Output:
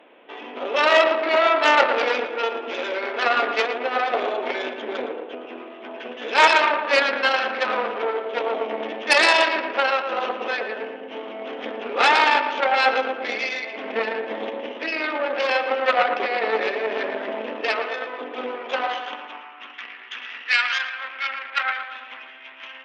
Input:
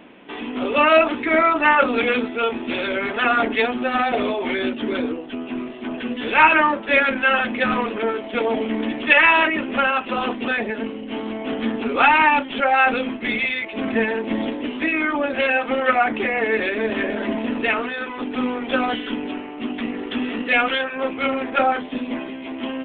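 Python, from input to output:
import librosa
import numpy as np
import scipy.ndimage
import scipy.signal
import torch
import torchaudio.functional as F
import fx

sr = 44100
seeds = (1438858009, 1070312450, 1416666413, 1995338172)

y = fx.echo_filtered(x, sr, ms=114, feedback_pct=65, hz=2400.0, wet_db=-6.0)
y = fx.cheby_harmonics(y, sr, harmonics=(4,), levels_db=(-8,), full_scale_db=-1.0)
y = fx.filter_sweep_highpass(y, sr, from_hz=500.0, to_hz=1600.0, start_s=18.51, end_s=19.93, q=1.5)
y = F.gain(torch.from_numpy(y), -5.5).numpy()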